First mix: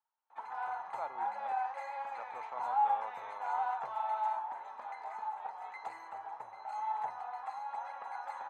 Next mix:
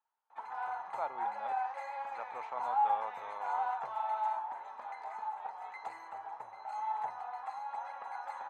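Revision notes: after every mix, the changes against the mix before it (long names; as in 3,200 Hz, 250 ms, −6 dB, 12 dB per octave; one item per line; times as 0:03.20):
speech +3.5 dB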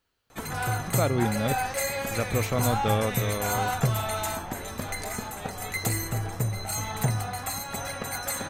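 master: remove four-pole ladder band-pass 930 Hz, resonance 80%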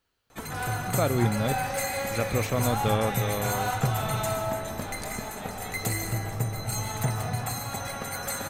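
background −5.5 dB
reverb: on, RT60 1.9 s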